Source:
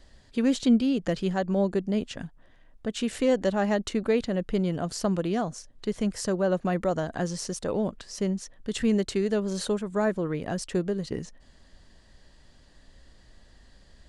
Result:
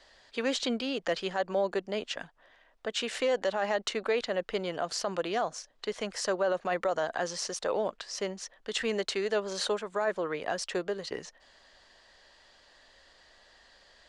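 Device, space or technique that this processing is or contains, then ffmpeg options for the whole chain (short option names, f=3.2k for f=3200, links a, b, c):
DJ mixer with the lows and highs turned down: -filter_complex "[0:a]acrossover=split=470 6600:gain=0.0794 1 0.2[a][b][c];[a][b][c]amix=inputs=3:normalize=0,alimiter=limit=-24dB:level=0:latency=1:release=27,volume=4.5dB"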